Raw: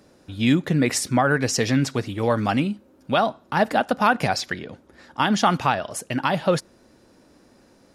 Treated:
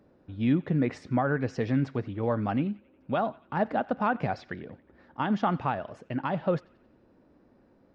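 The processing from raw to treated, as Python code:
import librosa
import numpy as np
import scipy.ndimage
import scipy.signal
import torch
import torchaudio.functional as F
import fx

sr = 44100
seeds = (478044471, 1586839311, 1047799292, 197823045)

p1 = fx.spacing_loss(x, sr, db_at_10k=40)
p2 = p1 + fx.echo_banded(p1, sr, ms=90, feedback_pct=62, hz=2400.0, wet_db=-20.5, dry=0)
y = F.gain(torch.from_numpy(p2), -4.5).numpy()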